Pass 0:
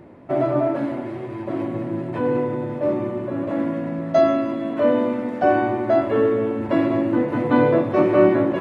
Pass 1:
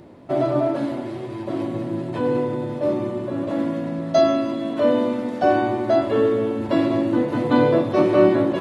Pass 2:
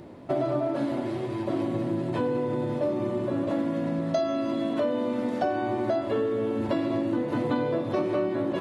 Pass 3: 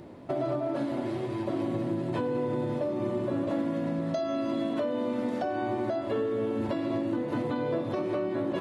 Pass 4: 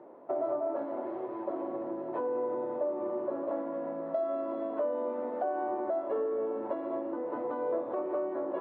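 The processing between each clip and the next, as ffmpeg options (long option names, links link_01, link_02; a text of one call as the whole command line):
ffmpeg -i in.wav -af "highshelf=frequency=2900:width_type=q:width=1.5:gain=7.5" out.wav
ffmpeg -i in.wav -af "acompressor=threshold=-23dB:ratio=10" out.wav
ffmpeg -i in.wav -af "alimiter=limit=-19dB:level=0:latency=1:release=220,volume=-1.5dB" out.wav
ffmpeg -i in.wav -af "asuperpass=centerf=700:order=4:qfactor=0.84" out.wav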